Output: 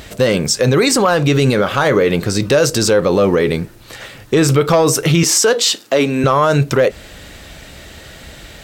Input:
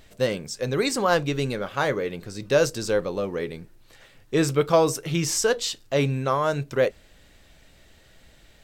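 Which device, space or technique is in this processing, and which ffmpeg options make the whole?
mastering chain: -filter_complex "[0:a]highpass=40,equalizer=frequency=1300:width_type=o:width=0.21:gain=2.5,acompressor=threshold=-24dB:ratio=2.5,asoftclip=type=tanh:threshold=-14.5dB,asoftclip=type=hard:threshold=-18dB,alimiter=level_in=23.5dB:limit=-1dB:release=50:level=0:latency=1,asettb=1/sr,asplit=3[link_01][link_02][link_03];[link_01]atrim=end=5.234[link_04];[link_02]atrim=start=5.23:end=6.24,asetpts=PTS-STARTPTS,afade=type=in:duration=0.004:curve=qsin,afade=type=out:start_time=1.006:duration=0.004:curve=qsin,highpass=frequency=200:width=0.5412,highpass=frequency=200:width=1.3066[link_05];[link_03]atrim=start=6.236[link_06];[link_04][link_05]acrossfade=duration=0.004:curve1=hsin:curve2=qsin[link_07];[link_07][link_06]acrossfade=duration=0.004:curve1=qsin:curve2=hsin,volume=-4dB"

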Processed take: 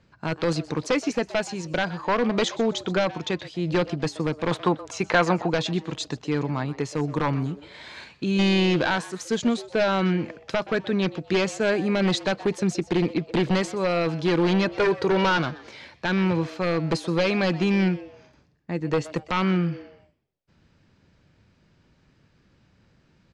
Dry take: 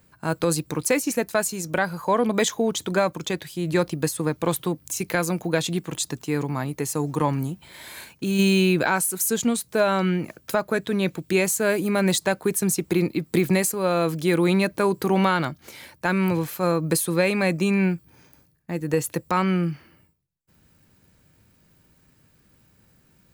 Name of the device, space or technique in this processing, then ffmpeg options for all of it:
synthesiser wavefolder: -filter_complex "[0:a]asettb=1/sr,asplit=3[link_01][link_02][link_03];[link_01]atrim=end=14.684[link_04];[link_02]atrim=start=14.68:end=15.38,asetpts=PTS-STARTPTS,afade=type=in:duration=0.004:curve=qsin,afade=type=out:start_time=0.696:duration=0.004:curve=qsin,aecho=1:1:2.1:0.71,atrim=end_sample=30870[link_05];[link_03]atrim=start=15.376[link_06];[link_04][link_05]acrossfade=duration=0.004:curve1=hsin:curve2=qsin[link_07];[link_07][link_06]acrossfade=duration=0.004:curve1=qsin:curve2=hsin,aeval=exprs='0.178*(abs(mod(val(0)/0.178+3,4)-2)-1)':channel_layout=same,lowpass=frequency=5400:width=0.5412,lowpass=frequency=5400:width=1.3066,asettb=1/sr,asplit=3[link_08][link_09][link_10];[link_08]atrim=end=4.514[link_11];[link_09]atrim=start=4.51:end=5.5,asetpts=PTS-STARTPTS,afade=type=in:duration=0.004:curve=qsin,afade=type=out:start_time=0.986:duration=0.004:curve=qsin,equalizer=frequency=1000:width=0.66:gain=11[link_12];[link_10]atrim=start=5.496[link_13];[link_11][link_12]acrossfade=duration=0.004:curve1=hsin:curve2=qsin[link_14];[link_14][link_13]acrossfade=duration=0.004:curve1=qsin:curve2=hsin,asplit=4[link_15][link_16][link_17][link_18];[link_16]adelay=125,afreqshift=150,volume=-18dB[link_19];[link_17]adelay=250,afreqshift=300,volume=-28.2dB[link_20];[link_18]adelay=375,afreqshift=450,volume=-38.3dB[link_21];[link_15][link_19][link_20][link_21]amix=inputs=4:normalize=0"

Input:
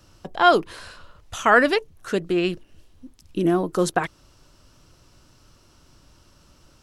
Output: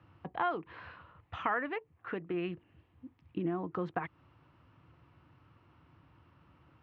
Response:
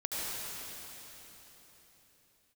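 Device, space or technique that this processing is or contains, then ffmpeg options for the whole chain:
bass amplifier: -filter_complex "[0:a]asettb=1/sr,asplit=3[link_01][link_02][link_03];[link_01]atrim=end=1.574[link_04];[link_02]atrim=start=1.57:end=2.34,asetpts=PTS-STARTPTS,afade=type=in:duration=0.004:curve=qsin,afade=type=out:start_time=0.766:duration=0.004:curve=qsin,bass=frequency=250:gain=-5,treble=frequency=4000:gain=-10[link_05];[link_03]atrim=start=2.336[link_06];[link_04][link_05]acrossfade=duration=0.004:curve1=hsin:curve2=qsin[link_07];[link_07][link_06]acrossfade=duration=0.004:curve1=qsin:curve2=hsin,acompressor=threshold=-27dB:ratio=3,highpass=frequency=79:width=0.5412,highpass=frequency=79:width=1.3066,equalizer=frequency=220:width_type=q:width=4:gain=-7,equalizer=frequency=400:width_type=q:width=4:gain=-7,equalizer=frequency=590:width_type=q:width=4:gain=-9,equalizer=frequency=1500:width_type=q:width=4:gain=-5,lowpass=frequency=2300:width=0.5412,lowpass=frequency=2300:width=1.3066,volume=-2.5dB"

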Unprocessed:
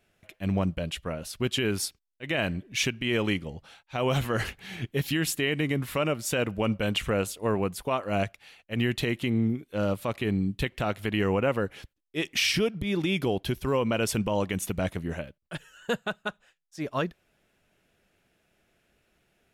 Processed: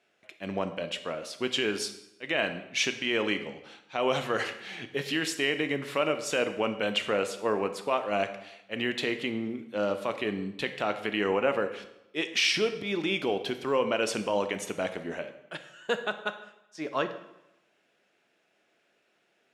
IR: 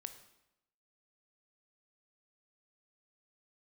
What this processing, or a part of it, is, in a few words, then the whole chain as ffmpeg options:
supermarket ceiling speaker: -filter_complex "[0:a]highpass=320,lowpass=6600[link_01];[1:a]atrim=start_sample=2205[link_02];[link_01][link_02]afir=irnorm=-1:irlink=0,volume=5dB"

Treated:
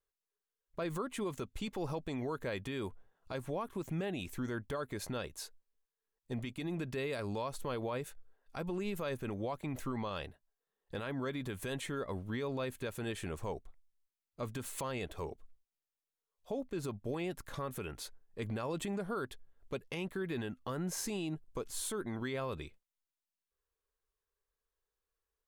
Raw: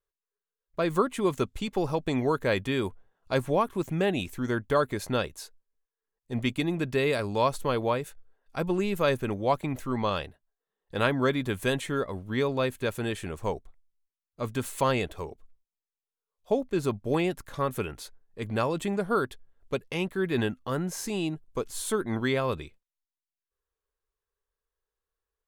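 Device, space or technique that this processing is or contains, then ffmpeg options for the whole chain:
stacked limiters: -af "alimiter=limit=-16.5dB:level=0:latency=1:release=443,alimiter=limit=-22.5dB:level=0:latency=1:release=228,alimiter=level_in=3dB:limit=-24dB:level=0:latency=1:release=52,volume=-3dB,volume=-2dB"

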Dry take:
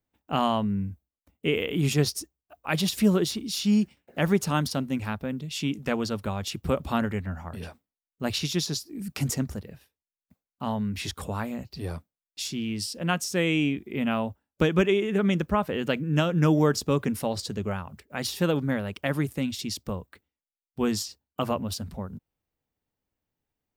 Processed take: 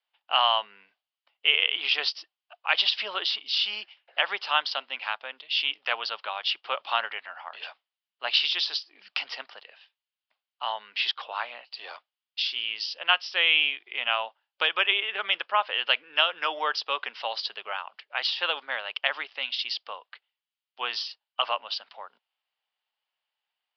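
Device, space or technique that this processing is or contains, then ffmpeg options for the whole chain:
musical greeting card: -af "aresample=11025,aresample=44100,highpass=frequency=760:width=0.5412,highpass=frequency=760:width=1.3066,equalizer=frequency=3000:width_type=o:width=0.44:gain=10,volume=4dB"

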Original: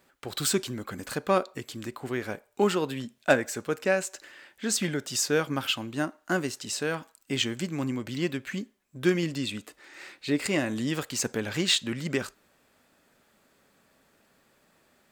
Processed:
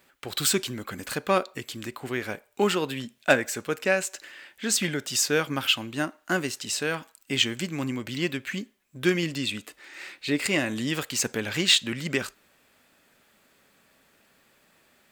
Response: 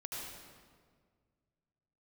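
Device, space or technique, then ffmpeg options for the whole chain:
presence and air boost: -af "equalizer=frequency=2600:width_type=o:width=1.5:gain=5.5,highshelf=frequency=9200:gain=6.5"

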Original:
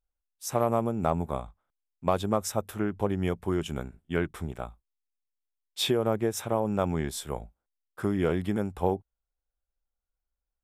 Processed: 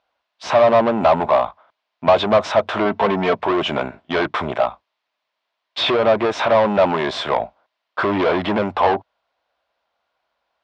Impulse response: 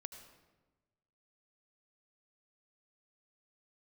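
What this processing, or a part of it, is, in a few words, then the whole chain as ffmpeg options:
overdrive pedal into a guitar cabinet: -filter_complex "[0:a]asplit=2[link_01][link_02];[link_02]highpass=frequency=720:poles=1,volume=31dB,asoftclip=type=tanh:threshold=-10.5dB[link_03];[link_01][link_03]amix=inputs=2:normalize=0,lowpass=frequency=6300:poles=1,volume=-6dB,highpass=90,equalizer=frequency=170:width_type=q:width=4:gain=-5,equalizer=frequency=420:width_type=q:width=4:gain=-3,equalizer=frequency=640:width_type=q:width=4:gain=10,equalizer=frequency=1000:width_type=q:width=4:gain=7,lowpass=frequency=4200:width=0.5412,lowpass=frequency=4200:width=1.3066,asettb=1/sr,asplit=3[link_04][link_05][link_06];[link_04]atrim=end=2.854[link_07];[link_05]atrim=start=2.85:end=3.35,asetpts=PTS-STARTPTS,afade=type=in:duration=0.004:curve=qsin,afade=type=out:start_time=0.496:duration=0.004:curve=qsin,aecho=1:1:4.5:0.59,atrim=end_sample=22050[link_08];[link_06]atrim=start=3.346[link_09];[link_07][link_08]acrossfade=duration=0.004:curve1=hsin:curve2=qsin[link_10];[link_10][link_09]acrossfade=duration=0.004:curve1=qsin:curve2=hsin"

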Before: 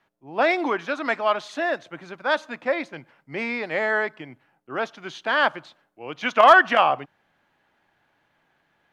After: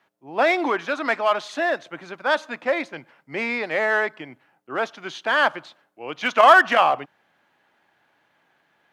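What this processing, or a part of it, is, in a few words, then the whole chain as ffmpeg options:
parallel distortion: -filter_complex "[0:a]asplit=2[link_01][link_02];[link_02]asoftclip=type=hard:threshold=-22dB,volume=-7.5dB[link_03];[link_01][link_03]amix=inputs=2:normalize=0,highpass=frequency=220:poles=1"

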